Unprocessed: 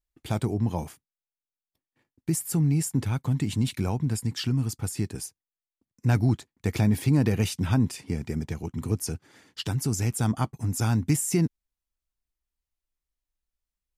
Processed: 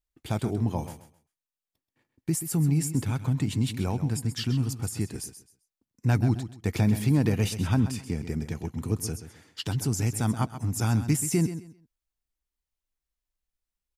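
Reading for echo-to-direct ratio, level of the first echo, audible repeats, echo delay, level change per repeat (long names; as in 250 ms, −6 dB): −11.5 dB, −11.5 dB, 2, 131 ms, −13.0 dB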